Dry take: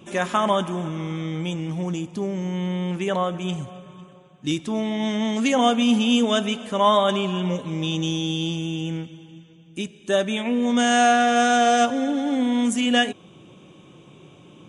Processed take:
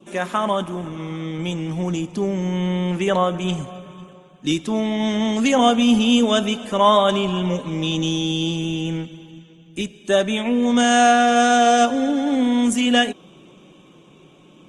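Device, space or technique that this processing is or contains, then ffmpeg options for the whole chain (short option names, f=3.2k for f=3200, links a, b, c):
video call: -af "adynamicequalizer=threshold=0.0126:dfrequency=2000:dqfactor=1.9:tfrequency=2000:tqfactor=1.9:attack=5:release=100:ratio=0.375:range=1.5:mode=cutabove:tftype=bell,highpass=f=150:w=0.5412,highpass=f=150:w=1.3066,dynaudnorm=f=130:g=21:m=5dB" -ar 48000 -c:a libopus -b:a 24k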